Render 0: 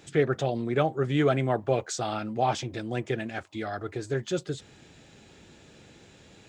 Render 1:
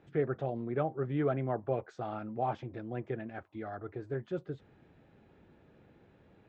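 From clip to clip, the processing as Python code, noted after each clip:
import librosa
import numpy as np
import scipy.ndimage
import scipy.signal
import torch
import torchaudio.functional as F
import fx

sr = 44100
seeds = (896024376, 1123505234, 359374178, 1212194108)

y = scipy.signal.sosfilt(scipy.signal.butter(2, 1500.0, 'lowpass', fs=sr, output='sos'), x)
y = y * librosa.db_to_amplitude(-7.0)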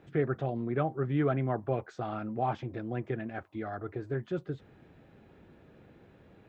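y = fx.notch(x, sr, hz=860.0, q=24.0)
y = fx.dynamic_eq(y, sr, hz=530.0, q=1.5, threshold_db=-43.0, ratio=4.0, max_db=-5)
y = y * librosa.db_to_amplitude(4.5)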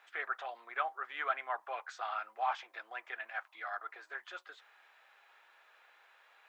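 y = scipy.signal.sosfilt(scipy.signal.butter(4, 940.0, 'highpass', fs=sr, output='sos'), x)
y = y * librosa.db_to_amplitude(5.0)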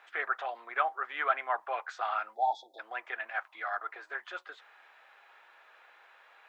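y = fx.spec_erase(x, sr, start_s=2.35, length_s=0.44, low_hz=910.0, high_hz=3300.0)
y = fx.high_shelf(y, sr, hz=3800.0, db=-8.5)
y = y * librosa.db_to_amplitude(6.5)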